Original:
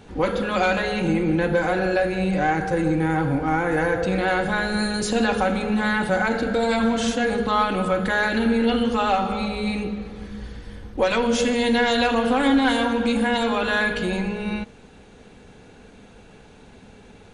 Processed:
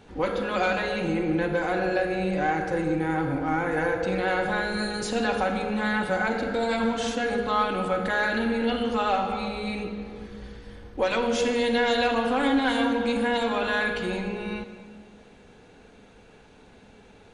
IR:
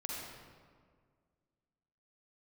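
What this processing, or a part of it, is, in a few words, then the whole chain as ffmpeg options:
filtered reverb send: -filter_complex "[0:a]asplit=2[s0][s1];[s1]highpass=230,lowpass=7000[s2];[1:a]atrim=start_sample=2205[s3];[s2][s3]afir=irnorm=-1:irlink=0,volume=0.531[s4];[s0][s4]amix=inputs=2:normalize=0,volume=0.473"

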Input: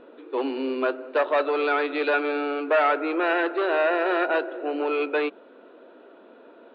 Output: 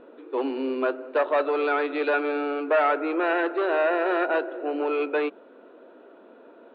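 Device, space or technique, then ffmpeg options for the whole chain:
behind a face mask: -af "highshelf=f=3000:g=-8"

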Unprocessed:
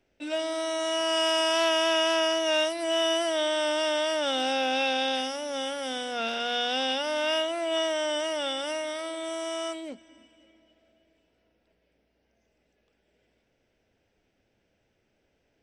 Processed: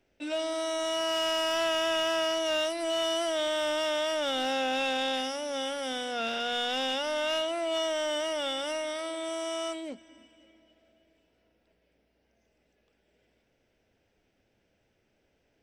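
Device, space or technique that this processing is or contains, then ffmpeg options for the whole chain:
saturation between pre-emphasis and de-emphasis: -af "highshelf=f=4900:g=10,asoftclip=type=tanh:threshold=0.075,highshelf=f=4900:g=-10"

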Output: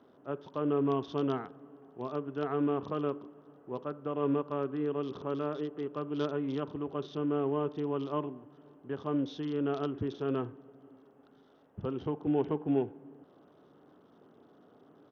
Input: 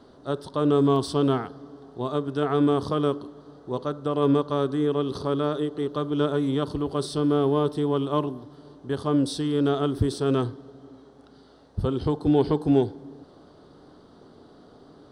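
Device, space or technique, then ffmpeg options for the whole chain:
Bluetooth headset: -af "highpass=140,aresample=8000,aresample=44100,volume=0.376" -ar 48000 -c:a sbc -b:a 64k

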